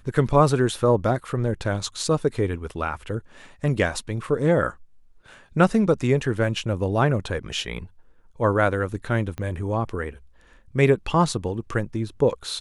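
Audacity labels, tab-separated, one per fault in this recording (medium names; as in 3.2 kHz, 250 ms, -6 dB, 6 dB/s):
9.380000	9.380000	pop -19 dBFS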